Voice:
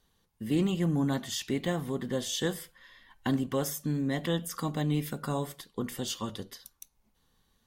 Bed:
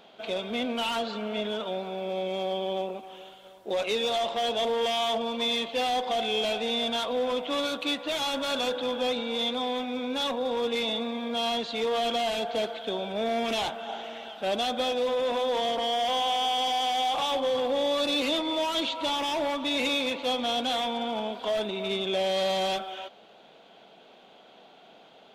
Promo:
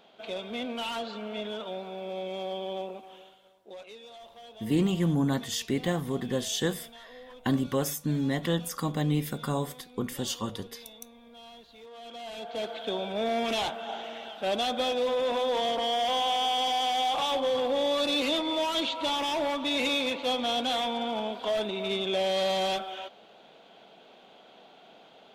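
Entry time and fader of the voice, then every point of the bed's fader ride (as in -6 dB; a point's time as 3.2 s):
4.20 s, +2.0 dB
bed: 3.14 s -4.5 dB
4.01 s -21 dB
11.9 s -21 dB
12.79 s -0.5 dB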